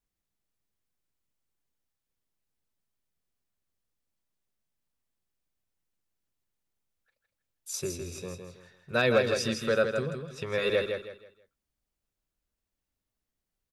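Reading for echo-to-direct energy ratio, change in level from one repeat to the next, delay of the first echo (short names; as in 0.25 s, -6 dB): -5.5 dB, -10.5 dB, 0.161 s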